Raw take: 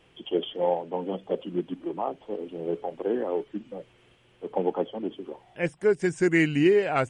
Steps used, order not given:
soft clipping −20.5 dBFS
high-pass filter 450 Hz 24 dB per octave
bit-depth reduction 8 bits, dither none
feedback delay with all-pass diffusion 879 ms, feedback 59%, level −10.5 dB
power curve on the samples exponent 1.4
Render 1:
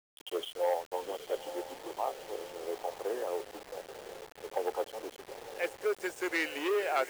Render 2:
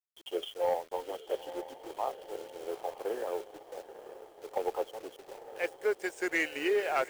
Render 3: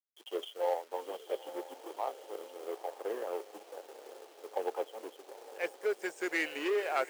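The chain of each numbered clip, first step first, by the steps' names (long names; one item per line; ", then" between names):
feedback delay with all-pass diffusion, then soft clipping, then power curve on the samples, then high-pass filter, then bit-depth reduction
high-pass filter, then bit-depth reduction, then feedback delay with all-pass diffusion, then soft clipping, then power curve on the samples
feedback delay with all-pass diffusion, then bit-depth reduction, then power curve on the samples, then soft clipping, then high-pass filter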